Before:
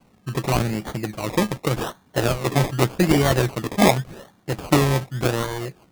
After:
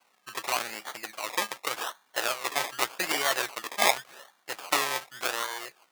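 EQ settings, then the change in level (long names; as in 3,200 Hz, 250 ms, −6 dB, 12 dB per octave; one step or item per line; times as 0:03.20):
high-pass filter 970 Hz 12 dB per octave
−1.0 dB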